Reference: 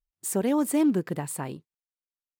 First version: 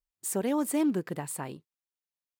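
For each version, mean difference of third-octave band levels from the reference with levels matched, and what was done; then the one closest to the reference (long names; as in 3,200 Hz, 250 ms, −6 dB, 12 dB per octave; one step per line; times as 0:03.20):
1.5 dB: low-shelf EQ 340 Hz −4 dB
level −2 dB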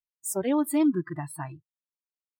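7.0 dB: noise reduction from a noise print of the clip's start 27 dB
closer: first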